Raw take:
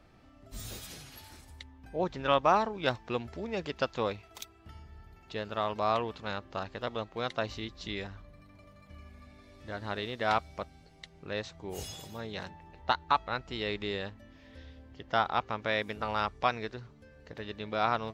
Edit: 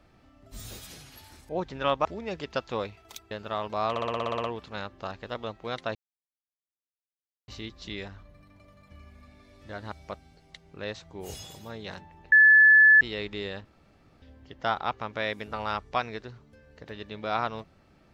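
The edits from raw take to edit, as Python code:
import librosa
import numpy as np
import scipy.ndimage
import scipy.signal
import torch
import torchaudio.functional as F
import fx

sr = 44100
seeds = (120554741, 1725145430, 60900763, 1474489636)

y = fx.edit(x, sr, fx.cut(start_s=1.49, length_s=0.44),
    fx.cut(start_s=2.49, length_s=0.82),
    fx.cut(start_s=4.57, length_s=0.8),
    fx.stutter(start_s=5.96, slice_s=0.06, count=10),
    fx.insert_silence(at_s=7.47, length_s=1.53),
    fx.cut(start_s=9.91, length_s=0.5),
    fx.bleep(start_s=12.81, length_s=0.69, hz=1730.0, db=-12.5),
    fx.room_tone_fill(start_s=14.14, length_s=0.57), tone=tone)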